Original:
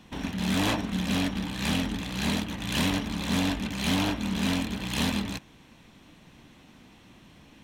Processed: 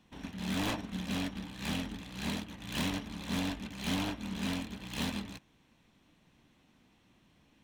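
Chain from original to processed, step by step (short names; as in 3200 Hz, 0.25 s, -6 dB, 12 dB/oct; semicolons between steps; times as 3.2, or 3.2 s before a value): tracing distortion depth 0.038 ms; upward expander 1.5:1, over -36 dBFS; gain -6.5 dB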